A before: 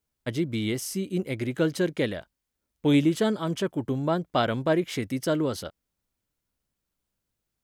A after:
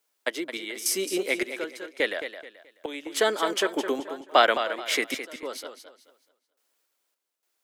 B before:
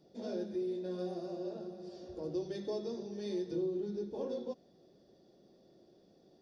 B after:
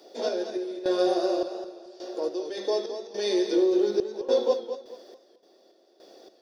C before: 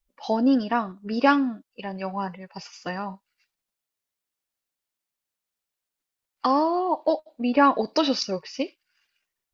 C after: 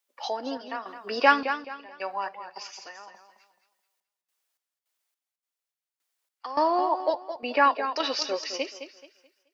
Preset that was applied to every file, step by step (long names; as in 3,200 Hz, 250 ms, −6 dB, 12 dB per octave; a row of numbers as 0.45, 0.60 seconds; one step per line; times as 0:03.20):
Bessel high-pass filter 520 Hz, order 6
dynamic equaliser 1,900 Hz, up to +5 dB, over −43 dBFS, Q 1.8
in parallel at +0.5 dB: downward compressor, threshold −34 dBFS
on the sum: sample-and-hold tremolo, depth 95%
feedback echo with a swinging delay time 215 ms, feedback 30%, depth 76 cents, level −10 dB
loudness normalisation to −27 LKFS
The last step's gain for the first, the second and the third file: +5.0, +14.5, +0.5 decibels